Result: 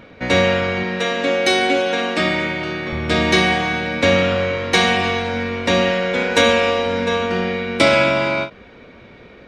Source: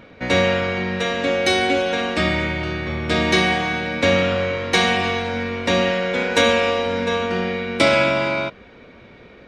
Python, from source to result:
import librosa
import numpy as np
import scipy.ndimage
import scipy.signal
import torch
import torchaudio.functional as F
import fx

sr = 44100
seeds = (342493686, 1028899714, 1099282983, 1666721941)

y = fx.highpass(x, sr, hz=170.0, slope=12, at=(0.83, 2.93))
y = fx.end_taper(y, sr, db_per_s=250.0)
y = y * 10.0 ** (2.0 / 20.0)